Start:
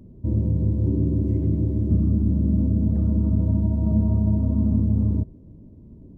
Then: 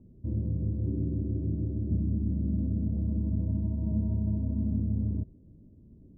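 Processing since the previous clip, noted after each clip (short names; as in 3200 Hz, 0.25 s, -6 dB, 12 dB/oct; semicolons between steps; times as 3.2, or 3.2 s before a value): Bessel low-pass 590 Hz, order 8; gain -8.5 dB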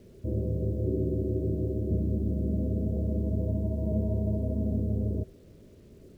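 band shelf 520 Hz +14.5 dB 1.2 oct; bit-crush 11-bit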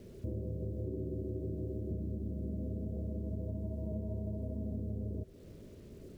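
compressor 4:1, threshold -38 dBFS, peak gain reduction 12.5 dB; gain +1 dB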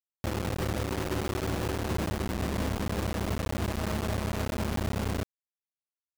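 limiter -33.5 dBFS, peak gain reduction 6 dB; companded quantiser 2-bit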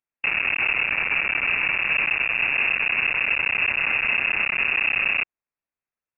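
inverted band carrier 2700 Hz; gain +7.5 dB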